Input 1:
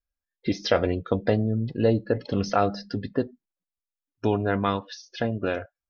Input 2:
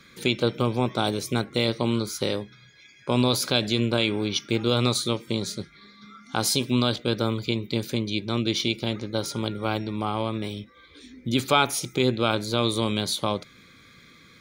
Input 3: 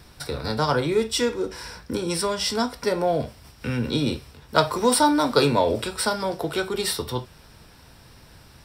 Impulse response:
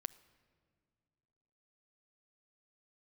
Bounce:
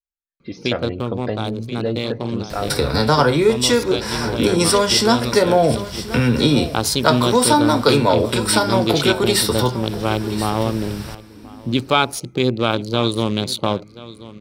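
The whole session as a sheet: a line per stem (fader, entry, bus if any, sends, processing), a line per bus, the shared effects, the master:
-14.5 dB, 0.00 s, no send, no echo send, none
-4.0 dB, 0.40 s, send -24 dB, echo send -19.5 dB, local Wiener filter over 25 samples; auto duck -10 dB, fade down 1.10 s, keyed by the first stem
+1.0 dB, 2.50 s, send -4.5 dB, echo send -11.5 dB, compression 1.5:1, threshold -38 dBFS, peak gain reduction 9 dB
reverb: on, pre-delay 7 ms
echo: delay 1031 ms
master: level rider gain up to 12.5 dB

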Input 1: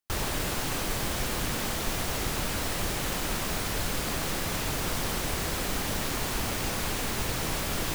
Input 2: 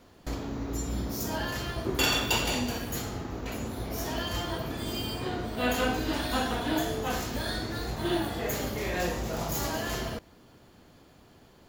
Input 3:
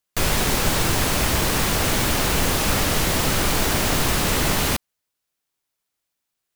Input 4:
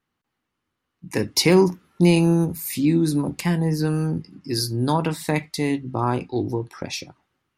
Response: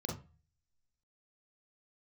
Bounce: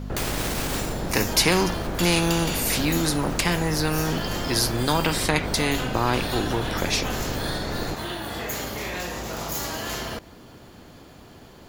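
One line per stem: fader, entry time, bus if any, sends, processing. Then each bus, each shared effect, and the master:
+0.5 dB, 0.00 s, no bus, no send, median filter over 41 samples; low-pass 1 kHz 6 dB/octave
-5.0 dB, 0.00 s, bus A, no send, none
-10.5 dB, 0.00 s, bus A, no send, peak limiter -15 dBFS, peak gain reduction 7.5 dB; auto duck -20 dB, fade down 0.25 s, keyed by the fourth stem
0.0 dB, 0.00 s, no bus, no send, treble shelf 6.7 kHz -11 dB; hum 50 Hz, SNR 13 dB
bus A: 0.0 dB, compression 5:1, threshold -38 dBFS, peak gain reduction 11 dB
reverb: none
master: spectrum-flattening compressor 2:1

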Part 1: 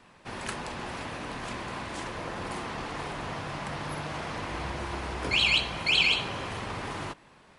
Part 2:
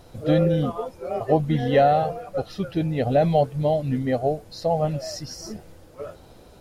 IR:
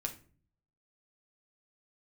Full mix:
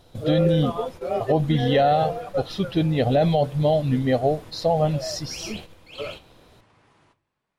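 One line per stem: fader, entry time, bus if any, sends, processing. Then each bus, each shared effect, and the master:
-15.5 dB, 0.00 s, send -5 dB, flange 2 Hz, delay 4.9 ms, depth 8.9 ms, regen -64%
+1.5 dB, 0.00 s, send -17 dB, peaking EQ 3.5 kHz +8 dB 0.49 oct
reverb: on, RT60 0.45 s, pre-delay 6 ms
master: gate -38 dBFS, range -8 dB; peak limiter -10.5 dBFS, peak gain reduction 6 dB

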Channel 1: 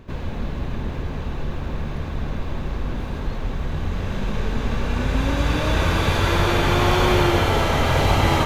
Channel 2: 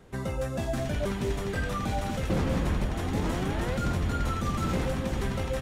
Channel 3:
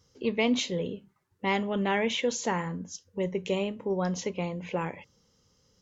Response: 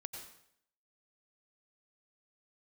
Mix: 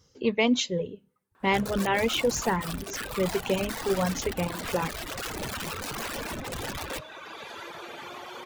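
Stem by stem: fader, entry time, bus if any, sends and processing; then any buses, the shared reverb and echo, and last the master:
-3.0 dB, 1.35 s, no send, Bessel high-pass 440 Hz, order 2; compression 16:1, threshold -31 dBFS, peak gain reduction 14 dB
-2.0 dB, 1.40 s, no send, integer overflow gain 25 dB
+3.0 dB, 0.00 s, send -23.5 dB, none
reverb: on, RT60 0.70 s, pre-delay 83 ms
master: reverb removal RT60 1.6 s

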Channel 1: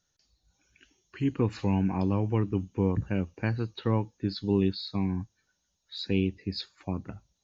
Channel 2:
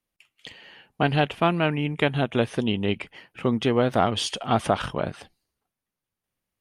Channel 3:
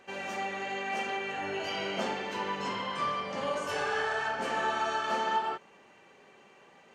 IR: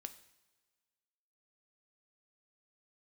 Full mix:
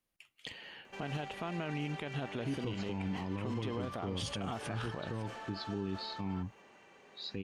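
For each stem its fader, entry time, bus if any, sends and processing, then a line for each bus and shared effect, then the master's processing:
-6.0 dB, 1.25 s, no send, none
-2.0 dB, 0.00 s, no send, compression, threshold -30 dBFS, peak gain reduction 14 dB
-2.0 dB, 0.85 s, no send, compression, threshold -38 dBFS, peak gain reduction 13 dB; saturation -39.5 dBFS, distortion -13 dB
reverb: none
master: peak limiter -28.5 dBFS, peak gain reduction 10.5 dB

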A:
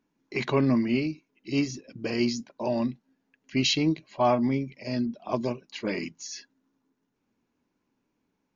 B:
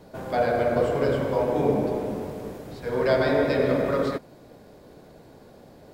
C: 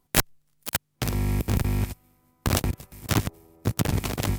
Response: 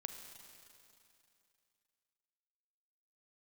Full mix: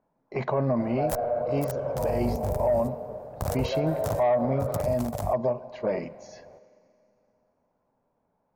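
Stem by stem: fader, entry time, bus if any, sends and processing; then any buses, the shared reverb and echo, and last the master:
+2.0 dB, 0.00 s, send -7.5 dB, treble shelf 5.4 kHz -8 dB
-6.5 dB, 0.65 s, no send, peak limiter -20.5 dBFS, peak gain reduction 11.5 dB
-7.5 dB, 0.95 s, no send, tone controls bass +2 dB, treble +14 dB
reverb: on, RT60 2.7 s, pre-delay 34 ms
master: FFT filter 140 Hz 0 dB, 320 Hz -10 dB, 620 Hz +11 dB, 2.8 kHz -15 dB; saturation -4.5 dBFS, distortion -18 dB; peak limiter -17 dBFS, peak gain reduction 11.5 dB

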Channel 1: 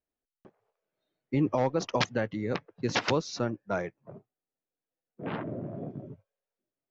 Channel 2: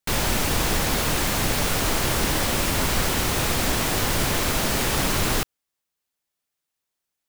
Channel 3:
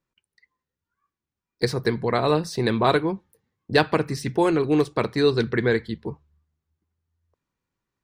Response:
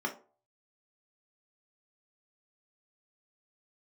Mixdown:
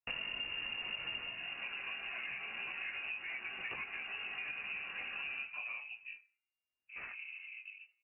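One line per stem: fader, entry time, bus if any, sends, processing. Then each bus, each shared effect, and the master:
-4.0 dB, 1.70 s, muted 3.83–5.56 s, no send, feedback comb 120 Hz, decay 1.3 s, harmonics all, mix 40%
-6.0 dB, 0.00 s, send -15 dB, auto duck -22 dB, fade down 0.40 s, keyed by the third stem
-16.5 dB, 0.00 s, send -6.5 dB, bit crusher 8-bit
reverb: on, RT60 0.40 s, pre-delay 3 ms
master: chorus voices 6, 0.74 Hz, delay 18 ms, depth 3.1 ms; frequency inversion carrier 2.8 kHz; compression 6:1, threshold -39 dBFS, peak gain reduction 14.5 dB

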